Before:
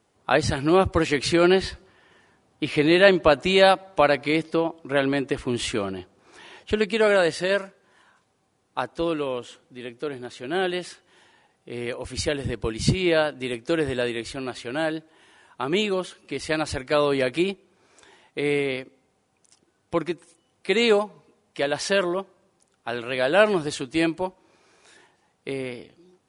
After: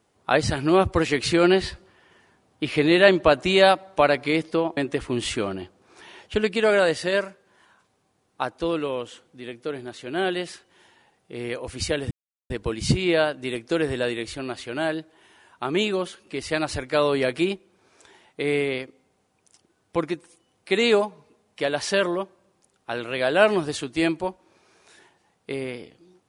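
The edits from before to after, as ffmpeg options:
-filter_complex "[0:a]asplit=3[s0][s1][s2];[s0]atrim=end=4.772[s3];[s1]atrim=start=5.138:end=12.48,asetpts=PTS-STARTPTS,afade=t=out:st=7.338:d=0.004:c=hsin,apad=pad_dur=0.39[s4];[s2]atrim=start=12.48,asetpts=PTS-STARTPTS,afade=t=in:d=0.004:c=hsin[s5];[s4][s5]concat=n=2:v=0:a=1[s6];[s3][s6]acrossfade=d=0.004:c1=hsin:c2=hsin"

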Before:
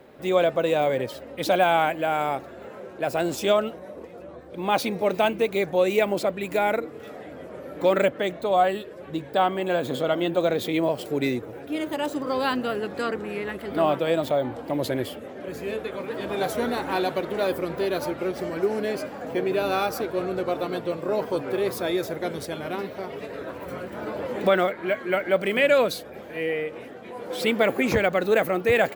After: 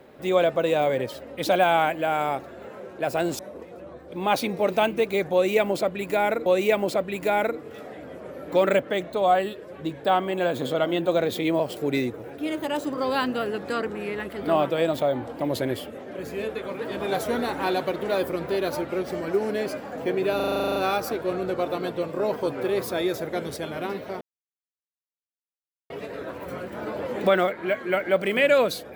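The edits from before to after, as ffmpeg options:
-filter_complex "[0:a]asplit=14[s0][s1][s2][s3][s4][s5][s6][s7][s8][s9][s10][s11][s12][s13];[s0]atrim=end=3.392[s14];[s1]atrim=start=3.808:end=6.882[s15];[s2]atrim=start=5.748:end=19.692[s16];[s3]atrim=start=19.648:end=19.692[s17];[s4]atrim=start=19.648:end=19.692[s18];[s5]atrim=start=19.648:end=19.692[s19];[s6]atrim=start=19.648:end=19.692[s20];[s7]atrim=start=19.648:end=19.692[s21];[s8]atrim=start=19.648:end=19.692[s22];[s9]atrim=start=19.648:end=19.692[s23];[s10]atrim=start=19.648:end=19.692[s24];[s11]atrim=start=19.648:end=19.692[s25];[s12]atrim=start=19.648:end=23.1,asetpts=PTS-STARTPTS,afade=t=out:st=3.448:d=0.004:c=hsin,apad=pad_dur=1.69[s26];[s13]atrim=start=23.1,asetpts=PTS-STARTPTS,afade=t=in:d=0.004:c=hsin[s27];[s14][s15]acrossfade=d=0.004:c1=hsin:c2=hsin[s28];[s28][s16]acrossfade=d=0.004:c1=hsin:c2=hsin[s29];[s29][s17]acrossfade=d=0.004:c1=hsin:c2=hsin[s30];[s30][s18]acrossfade=d=0.004:c1=hsin:c2=hsin[s31];[s31][s19]acrossfade=d=0.004:c1=hsin:c2=hsin[s32];[s32][s20]acrossfade=d=0.004:c1=hsin:c2=hsin[s33];[s33][s21]acrossfade=d=0.004:c1=hsin:c2=hsin[s34];[s34][s22]acrossfade=d=0.004:c1=hsin:c2=hsin[s35];[s35][s23]acrossfade=d=0.004:c1=hsin:c2=hsin[s36];[s36][s24]acrossfade=d=0.004:c1=hsin:c2=hsin[s37];[s37][s25]acrossfade=d=0.004:c1=hsin:c2=hsin[s38];[s26][s27]concat=n=2:v=0:a=1[s39];[s38][s39]acrossfade=d=0.004:c1=hsin:c2=hsin"

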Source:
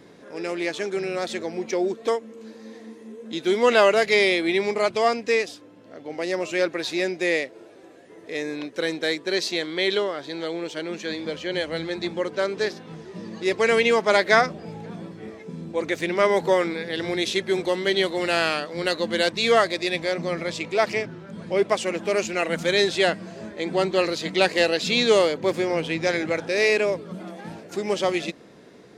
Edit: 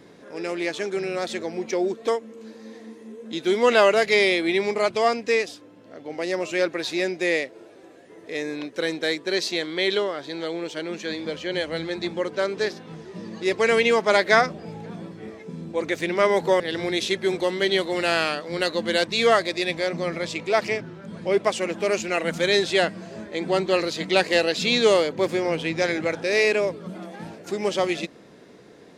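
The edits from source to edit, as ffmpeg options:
-filter_complex "[0:a]asplit=2[s0][s1];[s0]atrim=end=16.602[s2];[s1]atrim=start=16.848[s3];[s2][s3]acrossfade=d=0.004:c1=hsin:c2=hsin"

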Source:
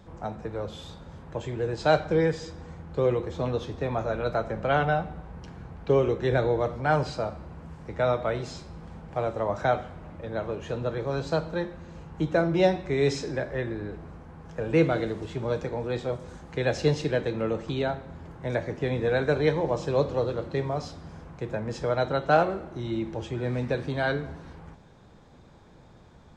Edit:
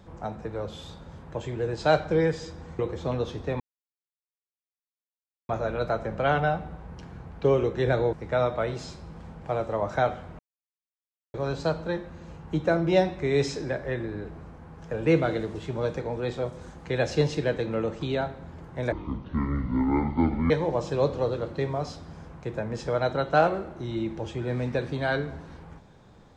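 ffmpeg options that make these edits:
-filter_complex "[0:a]asplit=8[s0][s1][s2][s3][s4][s5][s6][s7];[s0]atrim=end=2.792[s8];[s1]atrim=start=3.128:end=3.94,asetpts=PTS-STARTPTS,afade=t=out:st=0.808:d=0.004:c=hsin,apad=pad_dur=1.89[s9];[s2]atrim=start=3.94:end=6.582,asetpts=PTS-STARTPTS,afade=t=in:d=0.004:c=hsin[s10];[s3]atrim=start=7.798:end=10.06,asetpts=PTS-STARTPTS,afade=t=out:st=2.258:d=0.004:c=hsin[s11];[s4]atrim=start=10.06:end=11.01,asetpts=PTS-STARTPTS,volume=0[s12];[s5]atrim=start=11.01:end=18.594,asetpts=PTS-STARTPTS,afade=t=in:d=0.004:c=hsin[s13];[s6]atrim=start=18.59:end=19.46,asetpts=PTS-STARTPTS,asetrate=24255,aresample=44100,atrim=end_sample=69758,asetpts=PTS-STARTPTS[s14];[s7]atrim=start=19.456[s15];[s9][s10]concat=n=2:v=0:a=1[s16];[s8][s16]acrossfade=d=0.004:c1=hsin:c2=hsin[s17];[s11][s12][s13]concat=n=3:v=0:a=1[s18];[s17][s18]acrossfade=d=0.004:c1=hsin:c2=hsin[s19];[s19][s14]acrossfade=d=0.004:c1=hsin:c2=hsin[s20];[s20][s15]acrossfade=d=0.004:c1=hsin:c2=hsin"

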